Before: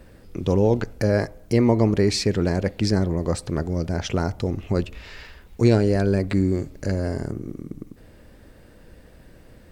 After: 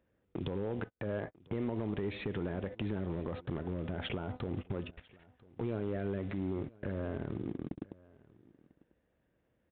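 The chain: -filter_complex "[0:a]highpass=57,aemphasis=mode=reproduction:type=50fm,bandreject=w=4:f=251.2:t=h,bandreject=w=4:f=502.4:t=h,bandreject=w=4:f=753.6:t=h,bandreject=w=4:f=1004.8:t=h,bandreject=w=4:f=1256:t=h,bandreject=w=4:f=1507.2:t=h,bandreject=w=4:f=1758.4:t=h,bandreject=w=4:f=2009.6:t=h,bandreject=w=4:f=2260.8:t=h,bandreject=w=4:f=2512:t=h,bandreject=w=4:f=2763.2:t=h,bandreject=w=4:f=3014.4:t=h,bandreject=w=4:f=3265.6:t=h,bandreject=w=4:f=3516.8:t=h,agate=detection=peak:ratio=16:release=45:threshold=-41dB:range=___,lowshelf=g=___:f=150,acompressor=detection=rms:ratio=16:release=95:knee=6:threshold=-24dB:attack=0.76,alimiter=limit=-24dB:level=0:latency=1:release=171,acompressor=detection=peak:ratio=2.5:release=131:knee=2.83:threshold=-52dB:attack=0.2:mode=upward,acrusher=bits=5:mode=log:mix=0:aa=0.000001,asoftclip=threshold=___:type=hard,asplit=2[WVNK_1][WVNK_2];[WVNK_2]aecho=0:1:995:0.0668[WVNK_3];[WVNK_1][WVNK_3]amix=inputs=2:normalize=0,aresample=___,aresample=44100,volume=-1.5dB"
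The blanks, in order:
-46dB, -5, -26.5dB, 8000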